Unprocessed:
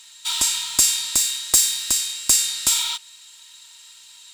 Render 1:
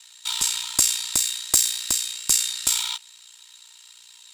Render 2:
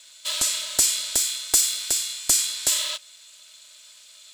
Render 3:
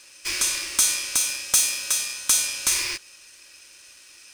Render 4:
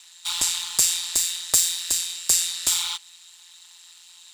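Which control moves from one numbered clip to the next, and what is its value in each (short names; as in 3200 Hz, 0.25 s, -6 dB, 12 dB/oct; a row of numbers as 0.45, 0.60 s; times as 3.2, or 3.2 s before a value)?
ring modulator, frequency: 30, 340, 1300, 86 Hz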